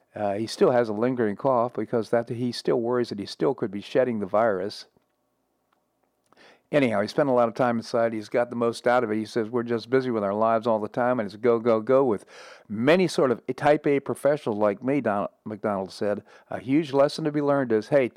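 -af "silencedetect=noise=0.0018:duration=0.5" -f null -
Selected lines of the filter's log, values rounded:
silence_start: 4.97
silence_end: 5.73 | silence_duration: 0.75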